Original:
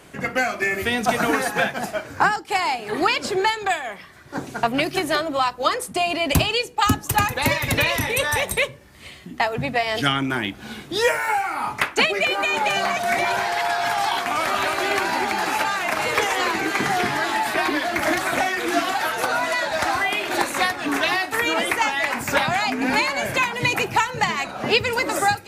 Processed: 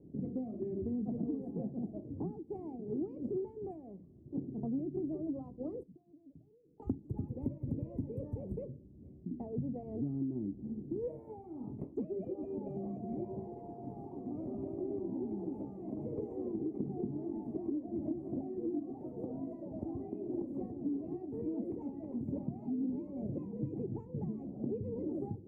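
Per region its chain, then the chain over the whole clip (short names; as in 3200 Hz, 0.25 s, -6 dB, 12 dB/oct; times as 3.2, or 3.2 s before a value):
5.83–6.8 ladder low-pass 1900 Hz, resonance 80% + comb 6.6 ms, depth 32% + compressor 10:1, threshold -47 dBFS
whole clip: inverse Chebyshev low-pass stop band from 1400 Hz, stop band 70 dB; tilt +3 dB/oct; compressor 4:1, threshold -39 dBFS; gain +5 dB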